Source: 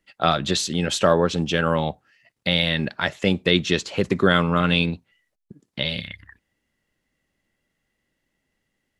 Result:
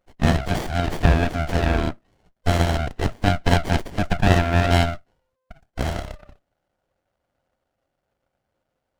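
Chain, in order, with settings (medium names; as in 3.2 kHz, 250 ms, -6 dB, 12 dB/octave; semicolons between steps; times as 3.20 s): split-band scrambler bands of 500 Hz; sliding maximum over 33 samples; trim +2.5 dB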